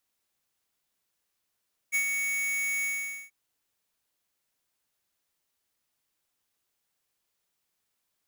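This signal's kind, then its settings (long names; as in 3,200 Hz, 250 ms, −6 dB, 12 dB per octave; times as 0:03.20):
note with an ADSR envelope square 2,230 Hz, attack 31 ms, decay 87 ms, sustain −4.5 dB, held 0.92 s, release 463 ms −25 dBFS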